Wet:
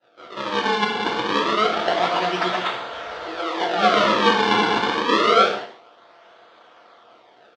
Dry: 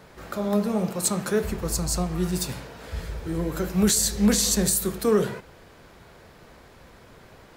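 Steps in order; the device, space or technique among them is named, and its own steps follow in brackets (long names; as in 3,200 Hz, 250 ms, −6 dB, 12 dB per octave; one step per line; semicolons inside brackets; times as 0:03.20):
downward expander −42 dBFS
0:03.21–0:03.61: high-pass filter 340 Hz 24 dB per octave
loudspeakers that aren't time-aligned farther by 43 metres −2 dB, 84 metres −1 dB
circuit-bent sampling toy (sample-and-hold swept by an LFO 39×, swing 160% 0.27 Hz; loudspeaker in its box 450–4,900 Hz, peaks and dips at 710 Hz +9 dB, 1,300 Hz +9 dB, 3,400 Hz +6 dB)
reverb whose tail is shaped and stops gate 180 ms falling, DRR 0.5 dB
level +1 dB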